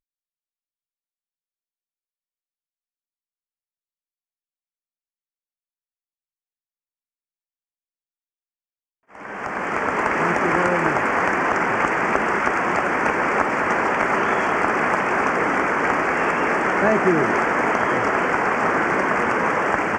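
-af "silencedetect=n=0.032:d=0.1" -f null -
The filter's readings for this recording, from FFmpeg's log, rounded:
silence_start: 0.00
silence_end: 9.15 | silence_duration: 9.15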